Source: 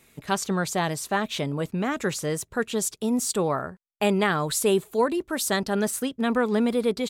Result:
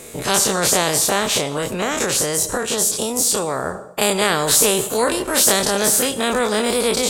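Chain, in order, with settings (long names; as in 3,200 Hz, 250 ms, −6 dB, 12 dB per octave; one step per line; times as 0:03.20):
every bin's largest magnitude spread in time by 60 ms
octave-band graphic EQ 500/2,000/8,000 Hz +12/−3/+9 dB
convolution reverb RT60 0.75 s, pre-delay 30 ms, DRR 17.5 dB
0:01.26–0:03.66: downward compressor, threshold −18 dBFS, peak gain reduction 8.5 dB
every bin compressed towards the loudest bin 2 to 1
level −1.5 dB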